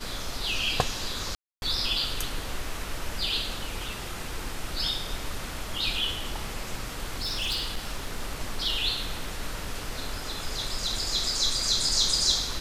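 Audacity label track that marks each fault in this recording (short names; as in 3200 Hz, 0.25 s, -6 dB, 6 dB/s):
1.350000	1.620000	gap 0.271 s
7.140000	8.290000	clipped -25 dBFS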